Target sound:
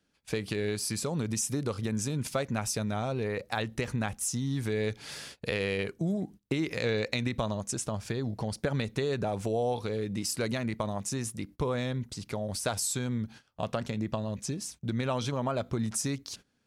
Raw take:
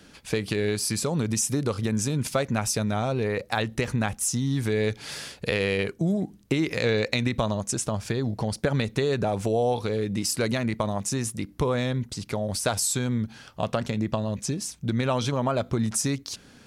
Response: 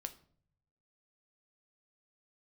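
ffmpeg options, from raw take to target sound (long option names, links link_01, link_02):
-af "agate=range=-18dB:threshold=-41dB:ratio=16:detection=peak,volume=-5.5dB"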